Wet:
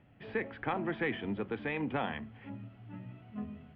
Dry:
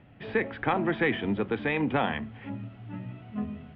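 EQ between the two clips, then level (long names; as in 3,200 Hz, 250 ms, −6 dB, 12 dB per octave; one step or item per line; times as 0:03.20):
notch filter 3,700 Hz, Q 18
−7.5 dB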